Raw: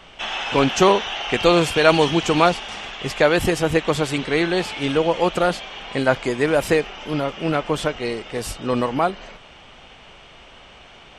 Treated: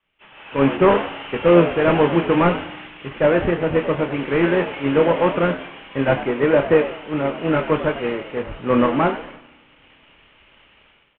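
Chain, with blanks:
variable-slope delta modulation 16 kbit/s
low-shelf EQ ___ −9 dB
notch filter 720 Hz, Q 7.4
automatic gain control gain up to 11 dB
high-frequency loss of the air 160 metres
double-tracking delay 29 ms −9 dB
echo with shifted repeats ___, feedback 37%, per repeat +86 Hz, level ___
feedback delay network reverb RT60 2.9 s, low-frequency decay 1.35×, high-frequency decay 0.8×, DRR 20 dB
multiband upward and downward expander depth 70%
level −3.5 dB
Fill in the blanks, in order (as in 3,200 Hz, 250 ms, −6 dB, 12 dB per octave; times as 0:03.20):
100 Hz, 98 ms, −12 dB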